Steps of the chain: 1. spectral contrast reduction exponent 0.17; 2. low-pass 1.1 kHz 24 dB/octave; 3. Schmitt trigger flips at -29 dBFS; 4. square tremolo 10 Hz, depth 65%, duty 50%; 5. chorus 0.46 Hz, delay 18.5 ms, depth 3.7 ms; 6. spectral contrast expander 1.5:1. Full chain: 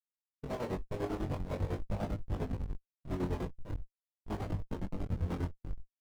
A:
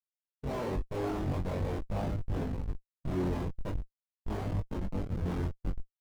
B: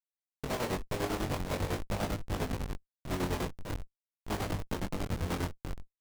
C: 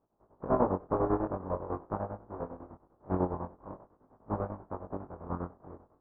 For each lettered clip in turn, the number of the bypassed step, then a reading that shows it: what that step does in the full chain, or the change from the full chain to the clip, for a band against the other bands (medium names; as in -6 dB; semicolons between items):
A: 4, crest factor change -2.5 dB; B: 6, 4 kHz band +9.5 dB; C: 3, crest factor change +9.0 dB